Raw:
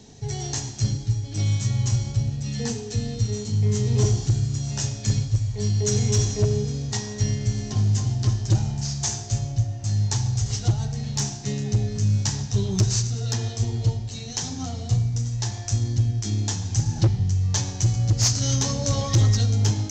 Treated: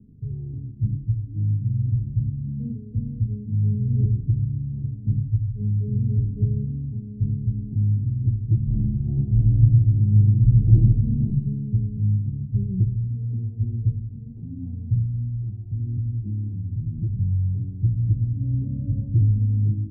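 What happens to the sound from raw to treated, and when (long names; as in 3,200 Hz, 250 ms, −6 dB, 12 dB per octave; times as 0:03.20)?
0:00.79–0:01.51: moving average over 36 samples
0:08.64–0:11.22: thrown reverb, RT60 0.88 s, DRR −11.5 dB
0:15.04–0:17.15: downward compressor, threshold −22 dBFS
whole clip: inverse Chebyshev low-pass filter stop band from 1,600 Hz, stop band 80 dB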